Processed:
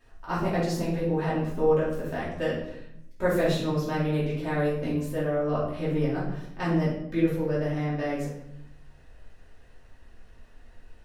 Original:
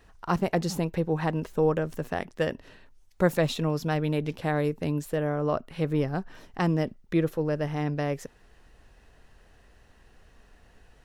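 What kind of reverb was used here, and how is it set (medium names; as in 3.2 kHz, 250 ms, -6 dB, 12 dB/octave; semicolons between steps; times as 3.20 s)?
simulated room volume 180 m³, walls mixed, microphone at 2.7 m; trim -9.5 dB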